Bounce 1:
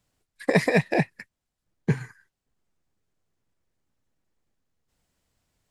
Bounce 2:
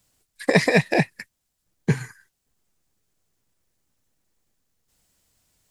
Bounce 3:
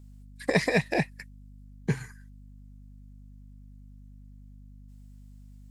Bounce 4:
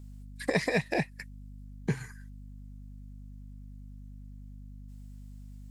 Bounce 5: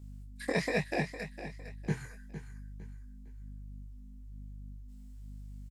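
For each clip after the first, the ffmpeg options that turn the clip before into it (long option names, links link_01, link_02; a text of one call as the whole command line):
ffmpeg -i in.wav -filter_complex "[0:a]acrossover=split=6900[link_01][link_02];[link_02]acompressor=threshold=-57dB:ratio=4:attack=1:release=60[link_03];[link_01][link_03]amix=inputs=2:normalize=0,highshelf=frequency=4300:gain=11.5,volume=2.5dB" out.wav
ffmpeg -i in.wav -af "aeval=exprs='val(0)+0.00891*(sin(2*PI*50*n/s)+sin(2*PI*2*50*n/s)/2+sin(2*PI*3*50*n/s)/3+sin(2*PI*4*50*n/s)/4+sin(2*PI*5*50*n/s)/5)':channel_layout=same,volume=-6.5dB" out.wav
ffmpeg -i in.wav -af "acompressor=threshold=-38dB:ratio=1.5,volume=3dB" out.wav
ffmpeg -i in.wav -af "flanger=delay=19:depth=5.4:speed=1.1,aecho=1:1:457|914|1371:0.266|0.0878|0.029" out.wav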